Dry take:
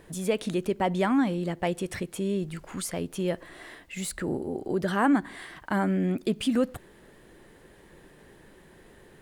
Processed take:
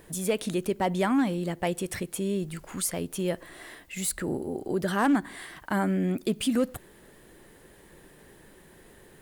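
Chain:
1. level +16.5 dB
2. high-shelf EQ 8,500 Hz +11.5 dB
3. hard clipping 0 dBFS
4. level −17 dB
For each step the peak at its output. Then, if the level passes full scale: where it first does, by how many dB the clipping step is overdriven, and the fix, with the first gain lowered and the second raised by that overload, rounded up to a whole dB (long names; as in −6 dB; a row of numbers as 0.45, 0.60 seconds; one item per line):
+3.5, +3.5, 0.0, −17.0 dBFS
step 1, 3.5 dB
step 1 +12.5 dB, step 4 −13 dB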